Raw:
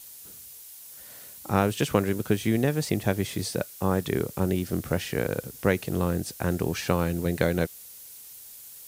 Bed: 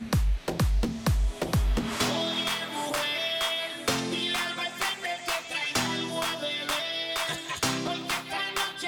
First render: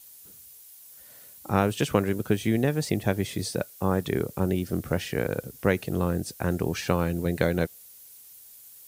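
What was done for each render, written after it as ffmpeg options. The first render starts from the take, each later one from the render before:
-af "afftdn=nr=6:nf=-46"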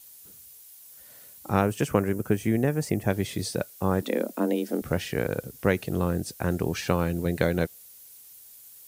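-filter_complex "[0:a]asettb=1/sr,asplit=3[a][b][c];[a]atrim=end=1.614[d];[b]atrim=start=1.61:end=3.1,asetpts=PTS-STARTPTS,afade=t=in:d=0.004:c=qsin,afade=t=out:st=1.486:d=0.004:c=qsin,equalizer=f=3.7k:t=o:w=0.69:g=-12[e];[c]atrim=start=3.096[f];[d][e]acrossfade=d=0.004:c1=hsin:c2=qsin[g];[g][f]acrossfade=d=0.004:c1=qsin:c2=hsin,asettb=1/sr,asplit=3[h][i][j];[h]atrim=end=4.024[k];[i]atrim=start=4.02:end=4.82,asetpts=PTS-STARTPTS,afade=t=in:d=0.004:c=qsin,afade=t=out:st=0.796:d=0.004:c=qsin,afreqshift=110[l];[j]atrim=start=4.816[m];[k][l]acrossfade=d=0.004:c1=hsin:c2=qsin[n];[n][m]acrossfade=d=0.004:c1=qsin:c2=hsin"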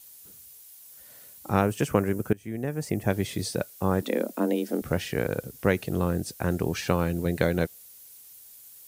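-filter_complex "[0:a]asplit=2[a][b];[a]atrim=end=2.33,asetpts=PTS-STARTPTS,afade=t=out:st=2.326:d=0.004:c=hsin:silence=0.0841395[c];[b]atrim=start=2.33,asetpts=PTS-STARTPTS,afade=t=in:d=0.75:silence=0.0841395[d];[c][d]concat=n=2:v=0:a=1"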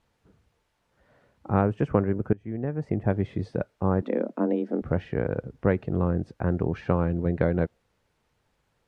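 -af "lowpass=1.4k,lowshelf=f=96:g=6"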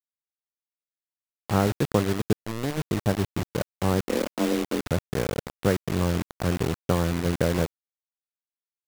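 -af "acrusher=bits=4:mix=0:aa=0.000001"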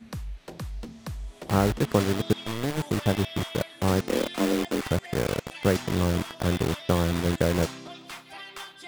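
-filter_complex "[1:a]volume=-11dB[a];[0:a][a]amix=inputs=2:normalize=0"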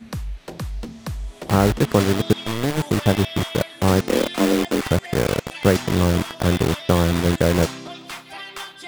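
-af "volume=6.5dB,alimiter=limit=-2dB:level=0:latency=1"

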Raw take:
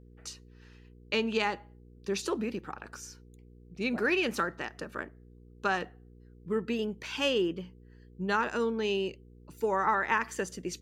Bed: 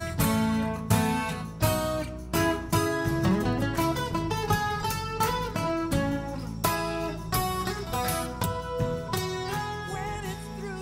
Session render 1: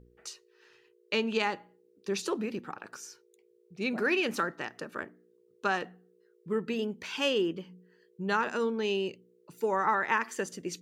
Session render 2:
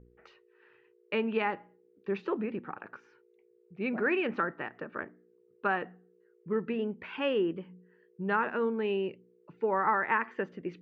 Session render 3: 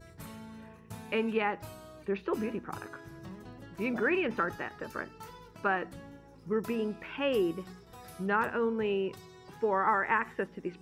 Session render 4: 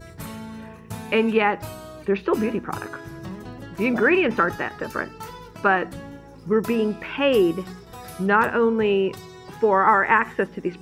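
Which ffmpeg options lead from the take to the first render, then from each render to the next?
-af "bandreject=f=60:t=h:w=4,bandreject=f=120:t=h:w=4,bandreject=f=180:t=h:w=4,bandreject=f=240:t=h:w=4,bandreject=f=300:t=h:w=4"
-af "lowpass=f=2.4k:w=0.5412,lowpass=f=2.4k:w=1.3066"
-filter_complex "[1:a]volume=-21.5dB[a];[0:a][a]amix=inputs=2:normalize=0"
-af "volume=10.5dB"

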